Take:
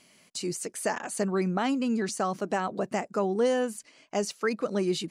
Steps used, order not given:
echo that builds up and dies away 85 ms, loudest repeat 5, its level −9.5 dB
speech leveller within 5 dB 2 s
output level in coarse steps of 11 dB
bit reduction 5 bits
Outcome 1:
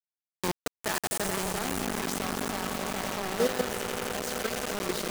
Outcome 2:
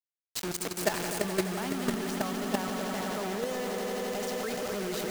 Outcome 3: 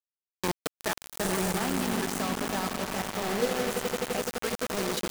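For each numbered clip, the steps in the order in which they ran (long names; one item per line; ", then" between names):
echo that builds up and dies away, then output level in coarse steps, then bit reduction, then speech leveller
bit reduction, then speech leveller, then echo that builds up and dies away, then output level in coarse steps
output level in coarse steps, then echo that builds up and dies away, then bit reduction, then speech leveller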